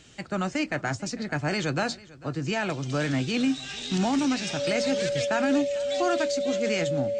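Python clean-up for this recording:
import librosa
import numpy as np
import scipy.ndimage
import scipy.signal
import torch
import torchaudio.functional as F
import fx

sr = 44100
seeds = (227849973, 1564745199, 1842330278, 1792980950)

y = fx.notch(x, sr, hz=570.0, q=30.0)
y = fx.fix_echo_inverse(y, sr, delay_ms=447, level_db=-21.0)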